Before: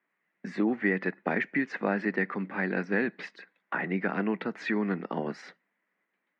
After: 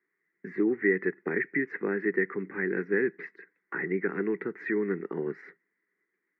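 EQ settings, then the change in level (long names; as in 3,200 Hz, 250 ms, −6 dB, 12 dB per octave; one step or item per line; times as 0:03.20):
drawn EQ curve 140 Hz 0 dB, 230 Hz −7 dB, 400 Hz +8 dB, 610 Hz −17 dB, 2,000 Hz +2 dB, 3,000 Hz −22 dB
0.0 dB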